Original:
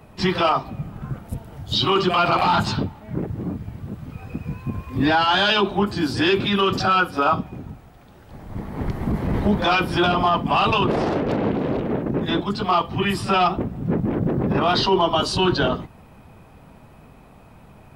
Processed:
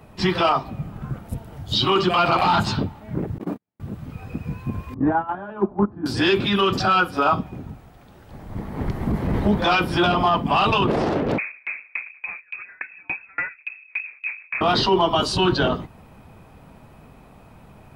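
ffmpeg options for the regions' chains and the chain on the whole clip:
-filter_complex "[0:a]asettb=1/sr,asplit=3[a][b][c];[a]atrim=end=3.384[d];[b]atrim=start=3.38:end=3.8,asetpts=PTS-STARTPTS,afade=t=in:d=0.004:c=qsin,afade=t=out:st=0.416:d=0.004:c=qsin,highpass=290,acontrast=70,agate=range=-50dB:threshold=-27dB:ratio=16:release=100:detection=peak[e];[c]atrim=start=3.796[f];[d][e]acrossfade=d=0.004:c1=hsin:c2=qsin[g];[g][f]acrossfade=d=0.004:c1=qsin:c2=hsin,asettb=1/sr,asplit=3[h][i][j];[h]atrim=end=4.944[k];[i]atrim=start=4.94:end=6.06,asetpts=PTS-STARTPTS,afade=t=in:d=0.004:c=qsin,afade=t=out:st=1.116:d=0.004:c=qsin,lowpass=f=1.3k:w=0.5412,lowpass=f=1.3k:w=1.3066,agate=range=-13dB:threshold=-19dB:ratio=16:release=100:detection=peak,equalizer=f=230:t=o:w=1:g=4[l];[j]atrim=start=6.056[m];[k][l]acrossfade=d=0.004:c1=hsin:c2=qsin[n];[n][m]acrossfade=d=0.004:c1=qsin:c2=hsin,asettb=1/sr,asplit=3[o][p][q];[o]atrim=end=11.384[r];[p]atrim=start=11.38:end=14.61,asetpts=PTS-STARTPTS,afade=t=in:d=0.004:c=qsin,afade=t=out:st=3.226:d=0.004:c=qsin,volume=17.5dB,asoftclip=hard,volume=-17.5dB,lowpass=f=2.3k:t=q:w=0.5098,lowpass=f=2.3k:t=q:w=0.6013,lowpass=f=2.3k:t=q:w=0.9,lowpass=f=2.3k:t=q:w=2.563,afreqshift=-2700,aeval=exprs='val(0)*pow(10,-35*if(lt(mod(3.5*n/s,1),2*abs(3.5)/1000),1-mod(3.5*n/s,1)/(2*abs(3.5)/1000),(mod(3.5*n/s,1)-2*abs(3.5)/1000)/(1-2*abs(3.5)/1000))/20)':c=same[s];[q]atrim=start=14.606[t];[r][s]acrossfade=d=0.004:c1=hsin:c2=qsin[u];[u][t]acrossfade=d=0.004:c1=qsin:c2=hsin"

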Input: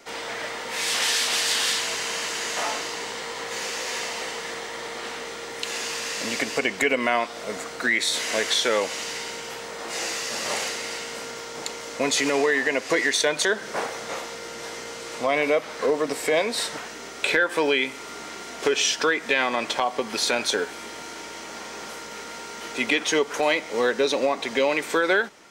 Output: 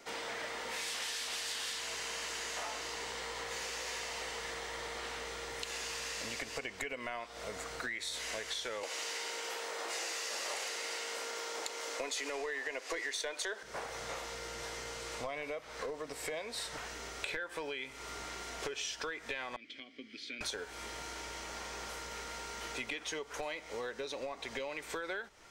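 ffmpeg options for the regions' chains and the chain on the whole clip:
-filter_complex "[0:a]asettb=1/sr,asplit=3[a][b][c];[a]atrim=end=8.834[d];[b]atrim=start=8.83:end=13.63,asetpts=PTS-STARTPTS,afade=t=in:d=0.004:c=qsin,afade=t=out:st=4.796:d=0.004:c=qsin,highpass=f=300:w=0.5412,highpass=f=300:w=1.3066,acontrast=68[e];[c]atrim=start=13.626[f];[d][e]acrossfade=d=0.004:c1=hsin:c2=qsin[g];[g][f]acrossfade=d=0.004:c1=qsin:c2=hsin,asettb=1/sr,asplit=3[h][i][j];[h]atrim=end=19.564[k];[i]atrim=start=19.56:end=20.41,asetpts=PTS-STARTPTS,afade=t=in:d=0.004:c=qsin,afade=t=out:st=0.846:d=0.004:c=qsin,asplit=3[l][m][n];[l]bandpass=f=270:t=q:w=8,volume=0dB[o];[m]bandpass=f=2.29k:t=q:w=8,volume=-6dB[p];[n]bandpass=f=3.01k:t=q:w=8,volume=-9dB[q];[o][p][q]amix=inputs=3:normalize=0,equalizer=f=4.9k:t=o:w=0.36:g=5.5[r];[j]atrim=start=20.406[s];[k][r]acrossfade=d=0.004:c1=hsin:c2=qsin[t];[t][s]acrossfade=d=0.004:c1=qsin:c2=hsin,acompressor=threshold=-31dB:ratio=5,asubboost=boost=9.5:cutoff=69,volume=-6dB"

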